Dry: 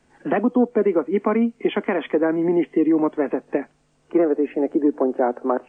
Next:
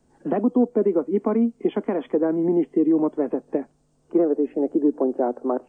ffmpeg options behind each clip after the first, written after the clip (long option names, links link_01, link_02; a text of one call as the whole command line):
ffmpeg -i in.wav -af "equalizer=frequency=2200:width_type=o:width=1.9:gain=-15" out.wav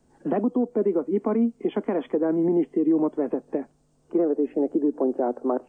ffmpeg -i in.wav -af "alimiter=limit=-14.5dB:level=0:latency=1:release=90" out.wav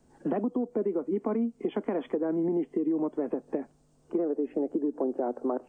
ffmpeg -i in.wav -af "acompressor=threshold=-27dB:ratio=3" out.wav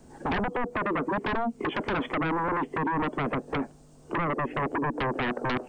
ffmpeg -i in.wav -af "aeval=exprs='0.141*sin(PI/2*5.01*val(0)/0.141)':channel_layout=same,volume=-7dB" out.wav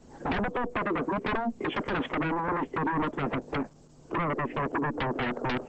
ffmpeg -i in.wav -ar 48000 -c:a libopus -b:a 10k out.opus